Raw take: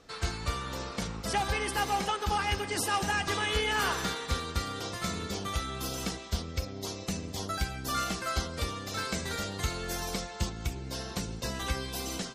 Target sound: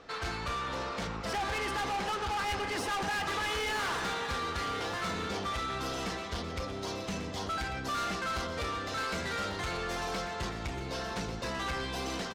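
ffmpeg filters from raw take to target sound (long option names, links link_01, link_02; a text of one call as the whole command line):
ffmpeg -i in.wav -filter_complex "[0:a]asplit=2[link_01][link_02];[link_02]highpass=frequency=720:poles=1,volume=8dB,asoftclip=type=tanh:threshold=-17dB[link_03];[link_01][link_03]amix=inputs=2:normalize=0,lowpass=frequency=6500:poles=1,volume=-6dB,acontrast=58,aemphasis=mode=reproduction:type=75fm,asoftclip=type=tanh:threshold=-29dB,aecho=1:1:1144:0.299,volume=-2dB" out.wav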